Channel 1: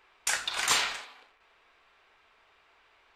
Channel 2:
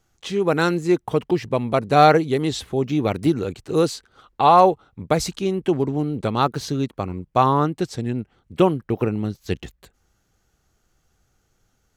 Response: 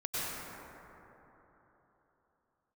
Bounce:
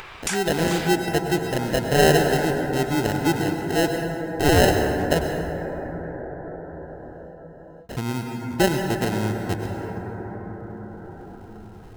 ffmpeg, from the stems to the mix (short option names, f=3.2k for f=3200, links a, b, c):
-filter_complex "[0:a]volume=1dB[a];[1:a]equalizer=f=6.1k:w=0.47:g=-13,acrusher=samples=38:mix=1:aa=0.000001,volume=-5dB,asplit=3[b][c][d];[b]atrim=end=5.27,asetpts=PTS-STARTPTS,afade=t=out:st=5.266:d=0.004:c=hsin[e];[c]atrim=start=5.27:end=7.89,asetpts=PTS-STARTPTS,volume=0[f];[d]atrim=start=7.89,asetpts=PTS-STARTPTS,afade=t=in:d=0.004:c=hsin[g];[e][f][g]concat=n=3:v=0:a=1,asplit=3[h][i][j];[i]volume=-7dB[k];[j]apad=whole_len=139221[l];[a][l]sidechaincompress=threshold=-30dB:ratio=8:attack=16:release=475[m];[2:a]atrim=start_sample=2205[n];[k][n]afir=irnorm=-1:irlink=0[o];[m][h][o]amix=inputs=3:normalize=0,acompressor=mode=upward:threshold=-23dB:ratio=2.5"